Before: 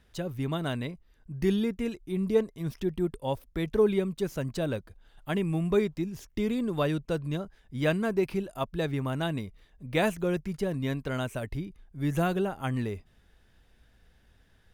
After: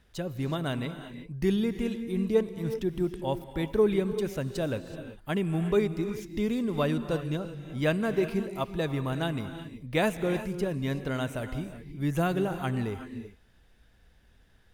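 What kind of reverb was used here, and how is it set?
gated-style reverb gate 400 ms rising, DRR 9.5 dB

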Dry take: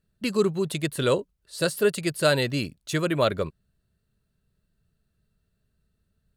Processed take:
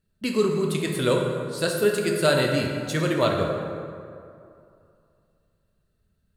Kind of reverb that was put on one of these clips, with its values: plate-style reverb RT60 2.5 s, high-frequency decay 0.5×, DRR 0.5 dB; trim -1 dB

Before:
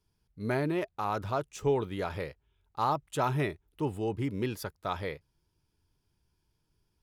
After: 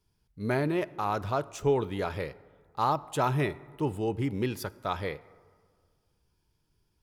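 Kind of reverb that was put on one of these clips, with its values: plate-style reverb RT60 1.8 s, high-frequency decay 0.45×, DRR 18 dB; trim +2 dB

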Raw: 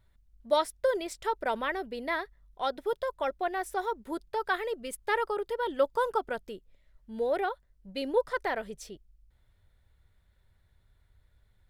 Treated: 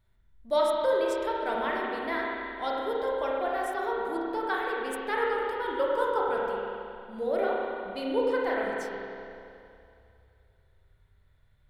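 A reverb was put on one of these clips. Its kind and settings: spring tank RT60 2.6 s, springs 30/45 ms, chirp 30 ms, DRR -4 dB; trim -3.5 dB

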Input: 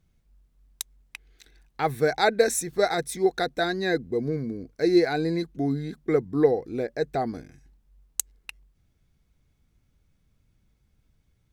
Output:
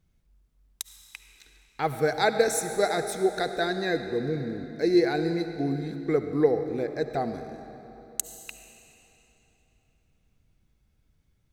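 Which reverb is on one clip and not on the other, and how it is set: algorithmic reverb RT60 3.5 s, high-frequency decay 0.9×, pre-delay 30 ms, DRR 8 dB; trim -2 dB

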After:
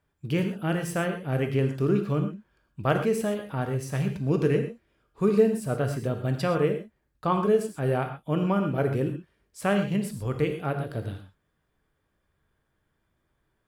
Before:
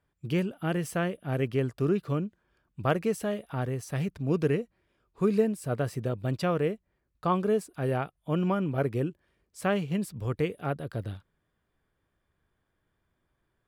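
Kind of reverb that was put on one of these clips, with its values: gated-style reverb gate 150 ms flat, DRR 5 dB; trim +1.5 dB

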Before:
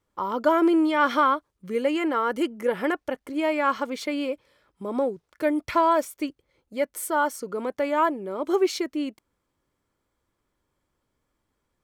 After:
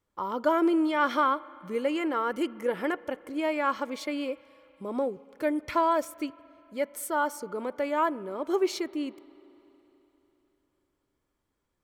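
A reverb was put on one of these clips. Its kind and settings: spring tank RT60 3.5 s, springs 33/41 ms, chirp 40 ms, DRR 20 dB; trim -4 dB

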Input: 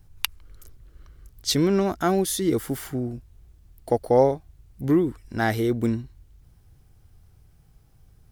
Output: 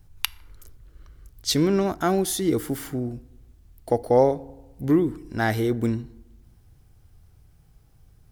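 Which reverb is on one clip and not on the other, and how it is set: FDN reverb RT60 1.1 s, low-frequency decay 1.05×, high-frequency decay 0.45×, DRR 18.5 dB

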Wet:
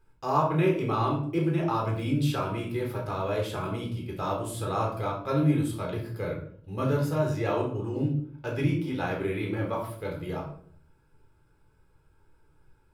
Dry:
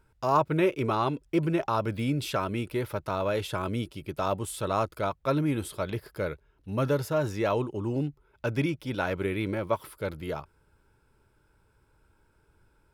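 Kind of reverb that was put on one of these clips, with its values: simulated room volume 710 m³, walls furnished, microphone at 3.9 m; trim -6.5 dB

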